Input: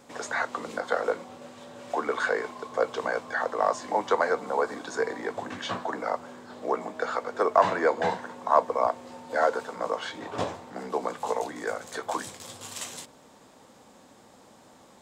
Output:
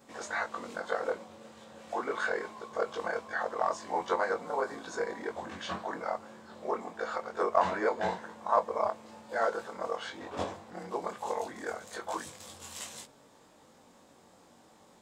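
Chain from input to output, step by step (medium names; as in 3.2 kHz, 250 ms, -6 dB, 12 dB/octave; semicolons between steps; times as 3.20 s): short-time spectra conjugated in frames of 43 ms; trim -2 dB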